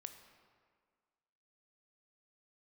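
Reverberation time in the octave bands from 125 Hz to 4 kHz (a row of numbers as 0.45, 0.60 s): 1.5, 1.8, 1.8, 1.8, 1.6, 1.2 s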